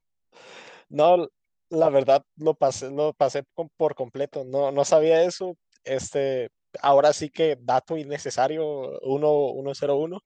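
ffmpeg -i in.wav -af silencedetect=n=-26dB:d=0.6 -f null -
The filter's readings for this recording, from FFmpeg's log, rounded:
silence_start: 0.00
silence_end: 0.95 | silence_duration: 0.95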